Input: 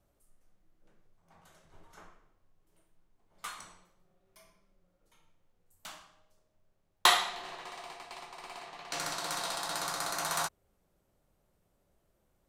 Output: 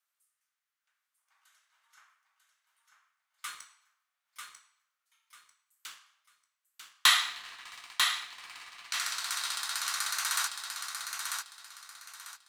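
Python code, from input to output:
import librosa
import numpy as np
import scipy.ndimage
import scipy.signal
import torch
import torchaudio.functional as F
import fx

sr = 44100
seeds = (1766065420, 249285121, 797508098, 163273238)

y = scipy.signal.sosfilt(scipy.signal.butter(4, 1300.0, 'highpass', fs=sr, output='sos'), x)
y = fx.leveller(y, sr, passes=1)
y = fx.echo_feedback(y, sr, ms=944, feedback_pct=28, wet_db=-5.0)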